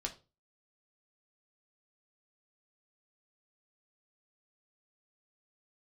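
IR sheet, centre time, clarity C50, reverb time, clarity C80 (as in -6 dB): 11 ms, 14.5 dB, 0.30 s, 21.0 dB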